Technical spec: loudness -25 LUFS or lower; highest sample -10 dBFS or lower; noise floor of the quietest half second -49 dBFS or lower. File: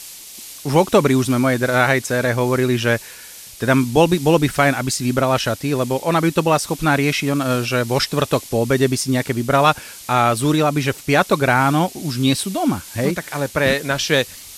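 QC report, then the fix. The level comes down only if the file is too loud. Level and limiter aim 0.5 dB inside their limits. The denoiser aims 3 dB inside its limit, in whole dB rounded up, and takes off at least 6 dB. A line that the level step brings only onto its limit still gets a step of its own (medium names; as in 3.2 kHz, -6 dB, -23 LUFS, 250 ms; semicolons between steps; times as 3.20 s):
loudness -18.0 LUFS: fail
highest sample -2.5 dBFS: fail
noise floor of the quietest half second -38 dBFS: fail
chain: noise reduction 7 dB, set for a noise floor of -38 dBFS; trim -7.5 dB; peak limiter -10.5 dBFS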